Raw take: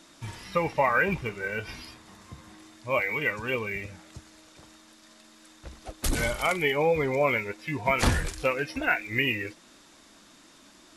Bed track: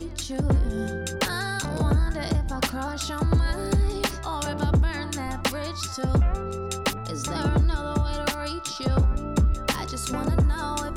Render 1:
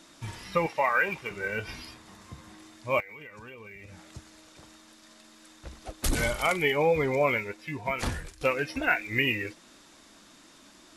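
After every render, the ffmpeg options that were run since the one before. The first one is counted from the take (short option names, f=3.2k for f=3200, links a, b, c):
-filter_complex "[0:a]asettb=1/sr,asplit=3[a][b][c];[a]atrim=end=0.664[d];[b]atrim=start=0.66:end=1.31,asetpts=PTS-STARTPTS,afade=t=in:d=0.004:c=qsin,afade=t=out:st=0.646:d=0.004:c=qsin,highpass=f=640:p=1[e];[c]atrim=start=1.306[f];[d][e]acrossfade=d=0.004:c1=hsin:c2=qsin[g];[g][f]acrossfade=d=0.004:c1=qsin:c2=hsin,asettb=1/sr,asplit=3[h][i][j];[h]atrim=end=3.004[k];[i]atrim=start=3:end=4.03,asetpts=PTS-STARTPTS,afade=t=in:d=0.004:c=qsin,afade=t=out:st=1.026:d=0.004:c=qsin,acompressor=threshold=-42dB:ratio=12:attack=3.2:release=140:knee=1:detection=peak[l];[j]atrim=start=4.026[m];[k][l]acrossfade=d=0.004:c1=hsin:c2=qsin[n];[n][m]acrossfade=d=0.004:c1=qsin:c2=hsin,asplit=2[o][p];[o]atrim=end=8.41,asetpts=PTS-STARTPTS,afade=t=out:st=7.15:d=1.26:silence=0.188365[q];[p]atrim=start=8.41,asetpts=PTS-STARTPTS,afade=t=in:d=0.004:c=hsin:silence=0.188365[r];[q][r]concat=n=2:v=0:a=1"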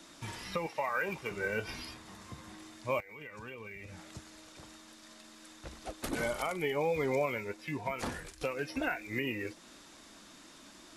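-filter_complex "[0:a]acrossover=split=170|1500|3400[a][b][c][d];[a]acompressor=threshold=-47dB:ratio=4[e];[b]acompressor=threshold=-28dB:ratio=4[f];[c]acompressor=threshold=-45dB:ratio=4[g];[d]acompressor=threshold=-43dB:ratio=4[h];[e][f][g][h]amix=inputs=4:normalize=0,alimiter=limit=-21dB:level=0:latency=1:release=490"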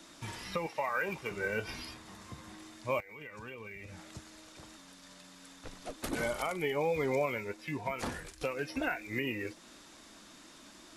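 -filter_complex "[0:a]asettb=1/sr,asplit=3[a][b][c];[a]atrim=end=4.774[d];[b]atrim=start=4.77:end=5.96,asetpts=PTS-STARTPTS,afade=t=in:d=0.004:c=qsin,afade=t=out:st=1.186:d=0.004:c=qsin,afreqshift=-41[e];[c]atrim=start=5.956[f];[d][e]acrossfade=d=0.004:c1=hsin:c2=qsin[g];[g][f]acrossfade=d=0.004:c1=qsin:c2=hsin"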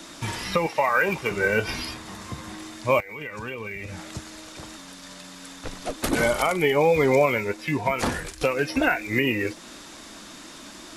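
-af "volume=12dB"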